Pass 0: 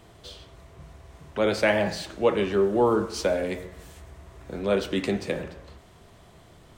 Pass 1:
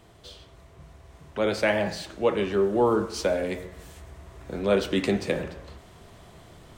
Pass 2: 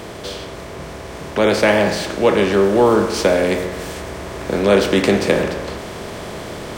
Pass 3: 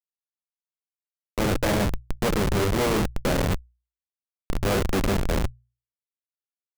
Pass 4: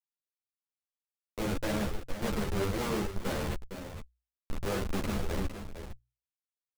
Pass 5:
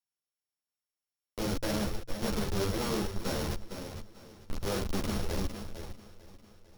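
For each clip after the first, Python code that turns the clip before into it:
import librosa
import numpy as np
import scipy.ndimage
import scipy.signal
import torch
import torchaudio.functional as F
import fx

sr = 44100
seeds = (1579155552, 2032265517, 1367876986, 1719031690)

y1 = fx.rider(x, sr, range_db=10, speed_s=2.0)
y2 = fx.bin_compress(y1, sr, power=0.6)
y2 = fx.high_shelf(y2, sr, hz=9200.0, db=4.5)
y2 = F.gain(torch.from_numpy(y2), 6.5).numpy()
y3 = fx.schmitt(y2, sr, flips_db=-12.0)
y3 = fx.hum_notches(y3, sr, base_hz=60, count=2)
y3 = F.gain(torch.from_numpy(y3), -3.5).numpy()
y4 = y3 + 10.0 ** (-9.5 / 20.0) * np.pad(y3, (int(458 * sr / 1000.0), 0))[:len(y3)]
y4 = fx.ensemble(y4, sr)
y4 = F.gain(torch.from_numpy(y4), -6.5).numpy()
y5 = np.r_[np.sort(y4[:len(y4) // 8 * 8].reshape(-1, 8), axis=1).ravel(), y4[len(y4) // 8 * 8:]]
y5 = fx.echo_feedback(y5, sr, ms=449, feedback_pct=59, wet_db=-18.0)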